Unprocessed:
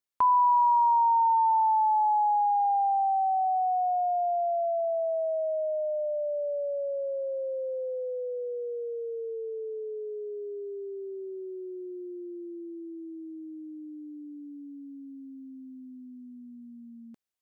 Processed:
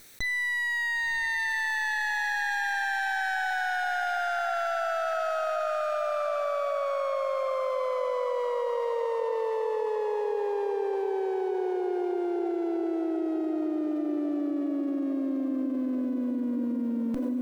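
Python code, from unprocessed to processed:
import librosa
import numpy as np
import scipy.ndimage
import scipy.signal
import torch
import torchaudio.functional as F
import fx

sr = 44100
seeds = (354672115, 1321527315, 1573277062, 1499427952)

y = fx.lower_of_two(x, sr, delay_ms=0.51)
y = np.clip(10.0 ** (27.5 / 20.0) * y, -1.0, 1.0) / 10.0 ** (27.5 / 20.0)
y = fx.echo_diffused(y, sr, ms=1022, feedback_pct=42, wet_db=-8)
y = fx.env_flatten(y, sr, amount_pct=100)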